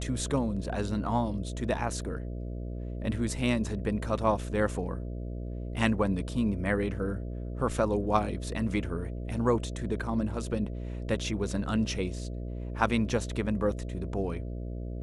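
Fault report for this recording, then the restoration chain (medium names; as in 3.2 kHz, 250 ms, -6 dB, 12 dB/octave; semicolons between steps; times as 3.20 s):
buzz 60 Hz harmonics 11 -36 dBFS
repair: de-hum 60 Hz, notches 11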